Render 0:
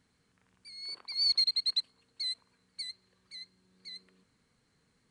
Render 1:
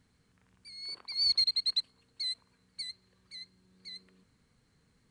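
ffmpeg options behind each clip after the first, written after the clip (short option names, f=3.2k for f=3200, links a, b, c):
-af "lowshelf=f=150:g=8.5"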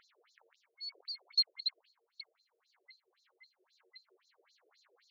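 -af "acompressor=mode=upward:threshold=-46dB:ratio=2.5,afftfilt=real='re*between(b*sr/1024,450*pow(5300/450,0.5+0.5*sin(2*PI*3.8*pts/sr))/1.41,450*pow(5300/450,0.5+0.5*sin(2*PI*3.8*pts/sr))*1.41)':imag='im*between(b*sr/1024,450*pow(5300/450,0.5+0.5*sin(2*PI*3.8*pts/sr))/1.41,450*pow(5300/450,0.5+0.5*sin(2*PI*3.8*pts/sr))*1.41)':win_size=1024:overlap=0.75"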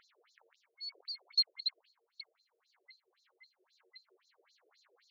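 -af anull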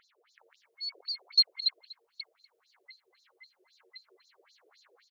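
-af "dynaudnorm=f=250:g=3:m=6.5dB,aecho=1:1:243:0.1"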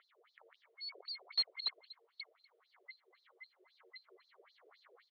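-filter_complex "[0:a]asplit=2[a][b];[b]aeval=exprs='(mod(11.2*val(0)+1,2)-1)/11.2':c=same,volume=-8dB[c];[a][c]amix=inputs=2:normalize=0,highpass=f=380:w=0.5412,highpass=f=380:w=1.3066,equalizer=f=510:t=q:w=4:g=-3,equalizer=f=870:t=q:w=4:g=-5,equalizer=f=1.6k:t=q:w=4:g=-6,equalizer=f=2.6k:t=q:w=4:g=-9,lowpass=f=3.2k:w=0.5412,lowpass=f=3.2k:w=1.3066,volume=1dB"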